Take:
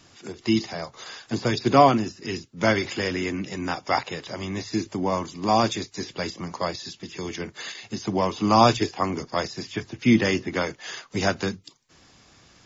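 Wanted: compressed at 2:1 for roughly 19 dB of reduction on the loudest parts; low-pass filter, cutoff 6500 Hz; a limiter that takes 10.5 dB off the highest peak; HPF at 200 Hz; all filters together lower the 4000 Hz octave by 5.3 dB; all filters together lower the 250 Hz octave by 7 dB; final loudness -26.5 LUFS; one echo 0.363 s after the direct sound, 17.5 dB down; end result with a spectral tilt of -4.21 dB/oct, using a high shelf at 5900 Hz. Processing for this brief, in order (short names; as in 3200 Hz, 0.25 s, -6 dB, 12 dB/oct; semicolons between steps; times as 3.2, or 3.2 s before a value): HPF 200 Hz; LPF 6500 Hz; bell 250 Hz -7 dB; bell 4000 Hz -3 dB; high shelf 5900 Hz -7.5 dB; compressor 2:1, threshold -48 dBFS; limiter -33 dBFS; echo 0.363 s -17.5 dB; gain +19 dB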